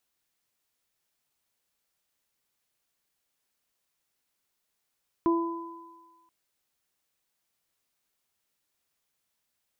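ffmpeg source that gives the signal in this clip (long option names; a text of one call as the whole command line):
ffmpeg -f lavfi -i "aevalsrc='0.106*pow(10,-3*t/1.13)*sin(2*PI*335*t)+0.0133*pow(10,-3*t/0.85)*sin(2*PI*670*t)+0.0473*pow(10,-3*t/1.69)*sin(2*PI*1005*t)':duration=1.03:sample_rate=44100" out.wav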